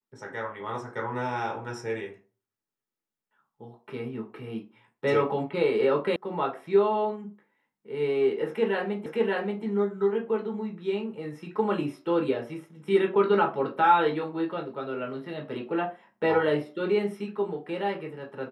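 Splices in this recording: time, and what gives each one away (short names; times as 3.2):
6.16 sound cut off
9.06 repeat of the last 0.58 s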